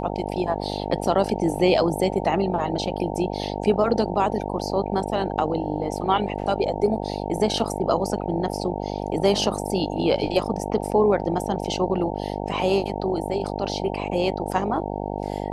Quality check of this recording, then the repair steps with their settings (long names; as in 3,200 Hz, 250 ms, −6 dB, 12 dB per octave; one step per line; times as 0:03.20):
mains buzz 50 Hz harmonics 18 −29 dBFS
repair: hum removal 50 Hz, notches 18